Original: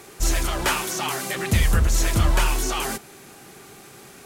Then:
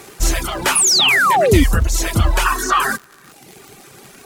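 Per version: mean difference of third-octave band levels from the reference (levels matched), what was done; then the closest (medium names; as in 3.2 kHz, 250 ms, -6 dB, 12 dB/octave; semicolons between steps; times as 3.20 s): 7.5 dB: time-frequency box 2.46–3.32 s, 950–1900 Hz +12 dB; reverb removal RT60 1.1 s; crackle 73 per s -33 dBFS; painted sound fall, 0.75–1.64 s, 250–11000 Hz -19 dBFS; trim +5.5 dB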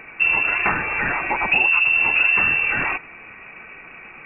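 17.5 dB: tracing distortion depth 0.1 ms; dynamic bell 1.8 kHz, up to +6 dB, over -44 dBFS, Q 4.3; frequency inversion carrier 2.7 kHz; compression 2.5:1, threshold -24 dBFS, peak gain reduction 8 dB; trim +6 dB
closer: first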